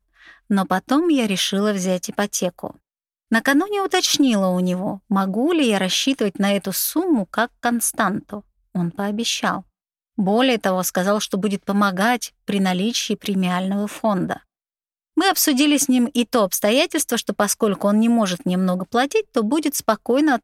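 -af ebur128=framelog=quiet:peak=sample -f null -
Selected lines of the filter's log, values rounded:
Integrated loudness:
  I:         -19.8 LUFS
  Threshold: -30.1 LUFS
Loudness range:
  LRA:         3.3 LU
  Threshold: -40.2 LUFS
  LRA low:   -21.9 LUFS
  LRA high:  -18.6 LUFS
Sample peak:
  Peak:       -3.0 dBFS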